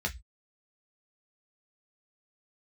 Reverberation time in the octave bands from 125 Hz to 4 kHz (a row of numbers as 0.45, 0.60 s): 0.35, 0.15, 0.10, 0.15, 0.20, 0.20 s